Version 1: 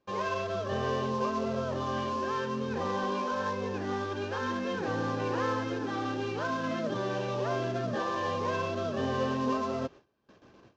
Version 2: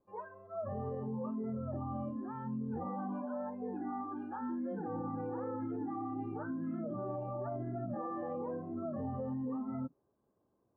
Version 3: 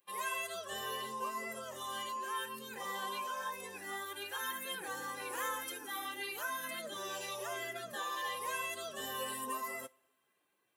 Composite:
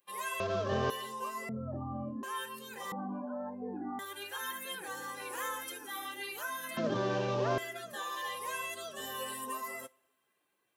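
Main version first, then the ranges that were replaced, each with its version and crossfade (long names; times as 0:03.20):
3
0:00.40–0:00.90: punch in from 1
0:01.49–0:02.23: punch in from 2
0:02.92–0:03.99: punch in from 2
0:06.77–0:07.58: punch in from 1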